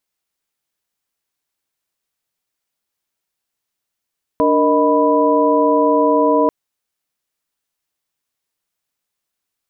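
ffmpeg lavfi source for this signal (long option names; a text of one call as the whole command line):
ffmpeg -f lavfi -i "aevalsrc='0.15*(sin(2*PI*293.66*t)+sin(2*PI*466.16*t)+sin(2*PI*622.25*t)+sin(2*PI*987.77*t))':duration=2.09:sample_rate=44100" out.wav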